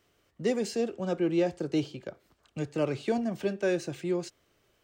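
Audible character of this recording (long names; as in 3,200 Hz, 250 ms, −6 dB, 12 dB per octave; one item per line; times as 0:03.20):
background noise floor −71 dBFS
spectral slope −6.0 dB per octave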